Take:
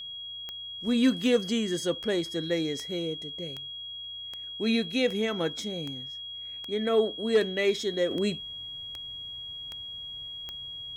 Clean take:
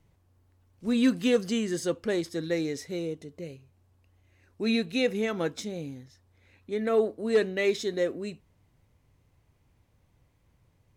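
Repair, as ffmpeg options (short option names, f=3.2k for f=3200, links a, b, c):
-af "adeclick=t=4,bandreject=f=3.3k:w=30,asetnsamples=n=441:p=0,asendcmd='8.11 volume volume -8dB',volume=0dB"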